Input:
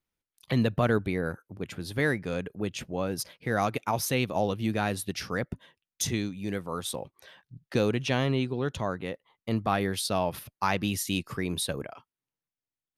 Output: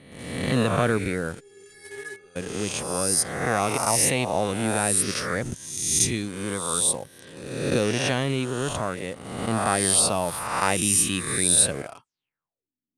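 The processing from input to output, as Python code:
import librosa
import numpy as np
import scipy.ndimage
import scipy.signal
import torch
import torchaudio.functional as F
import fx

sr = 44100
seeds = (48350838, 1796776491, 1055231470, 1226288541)

p1 = fx.spec_swells(x, sr, rise_s=1.14)
p2 = fx.stiff_resonator(p1, sr, f0_hz=400.0, decay_s=0.27, stiffness=0.008, at=(1.39, 2.35), fade=0.02)
p3 = fx.quant_dither(p2, sr, seeds[0], bits=6, dither='none')
p4 = p2 + F.gain(torch.from_numpy(p3), -10.0).numpy()
p5 = fx.filter_sweep_lowpass(p4, sr, from_hz=9200.0, to_hz=250.0, start_s=12.03, end_s=12.72, q=6.2)
y = F.gain(torch.from_numpy(p5), -2.0).numpy()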